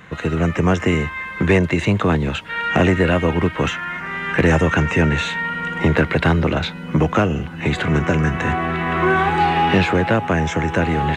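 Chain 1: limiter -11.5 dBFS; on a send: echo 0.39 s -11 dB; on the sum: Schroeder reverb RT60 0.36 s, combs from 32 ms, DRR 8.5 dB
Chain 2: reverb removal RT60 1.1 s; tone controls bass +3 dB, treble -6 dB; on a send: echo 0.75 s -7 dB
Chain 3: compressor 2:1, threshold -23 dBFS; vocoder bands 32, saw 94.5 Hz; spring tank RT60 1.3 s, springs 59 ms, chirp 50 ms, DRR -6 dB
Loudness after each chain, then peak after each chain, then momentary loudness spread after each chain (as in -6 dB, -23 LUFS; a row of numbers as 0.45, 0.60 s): -20.5, -18.5, -19.5 LUFS; -7.5, -3.5, -4.0 dBFS; 4, 6, 9 LU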